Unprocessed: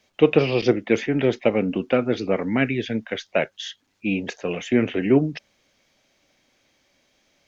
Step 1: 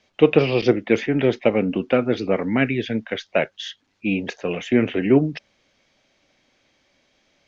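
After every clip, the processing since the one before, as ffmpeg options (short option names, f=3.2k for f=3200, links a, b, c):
-af "lowpass=5.7k,volume=1.5dB"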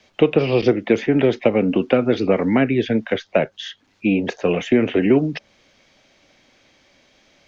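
-filter_complex "[0:a]acrossover=split=260|1300|2800[a][b][c][d];[a]acompressor=threshold=-30dB:ratio=4[e];[b]acompressor=threshold=-22dB:ratio=4[f];[c]acompressor=threshold=-43dB:ratio=4[g];[d]acompressor=threshold=-44dB:ratio=4[h];[e][f][g][h]amix=inputs=4:normalize=0,volume=7.5dB"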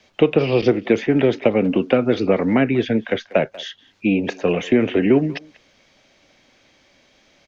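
-filter_complex "[0:a]asplit=2[a][b];[b]adelay=190,highpass=300,lowpass=3.4k,asoftclip=type=hard:threshold=-11.5dB,volume=-19dB[c];[a][c]amix=inputs=2:normalize=0"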